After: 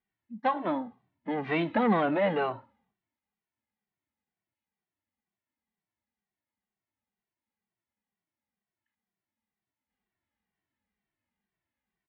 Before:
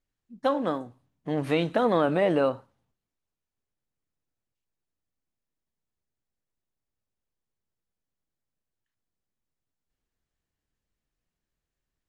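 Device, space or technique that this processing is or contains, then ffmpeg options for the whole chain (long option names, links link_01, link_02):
barber-pole flanger into a guitar amplifier: -filter_complex "[0:a]asplit=2[link_01][link_02];[link_02]adelay=2.1,afreqshift=-2.1[link_03];[link_01][link_03]amix=inputs=2:normalize=1,asoftclip=type=tanh:threshold=-21dB,highpass=88,equalizer=frequency=140:width_type=q:width=4:gain=-7,equalizer=frequency=210:width_type=q:width=4:gain=8,equalizer=frequency=490:width_type=q:width=4:gain=-4,equalizer=frequency=860:width_type=q:width=4:gain=8,equalizer=frequency=2000:width_type=q:width=4:gain=8,lowpass=frequency=3600:width=0.5412,lowpass=frequency=3600:width=1.3066,volume=1.5dB"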